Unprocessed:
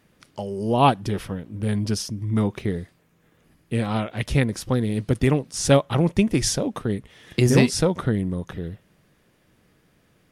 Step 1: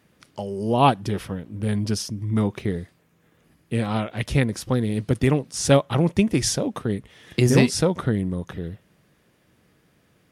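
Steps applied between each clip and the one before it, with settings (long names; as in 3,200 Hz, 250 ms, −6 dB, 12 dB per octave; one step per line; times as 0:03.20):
high-pass filter 48 Hz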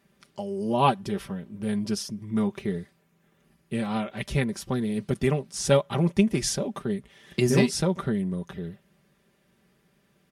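comb filter 5.1 ms, depth 67%
level −5.5 dB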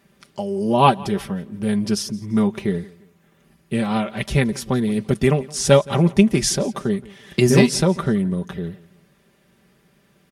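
repeating echo 170 ms, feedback 35%, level −22 dB
level +7 dB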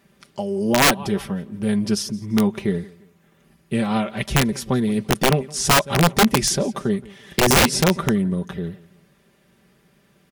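wrap-around overflow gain 8.5 dB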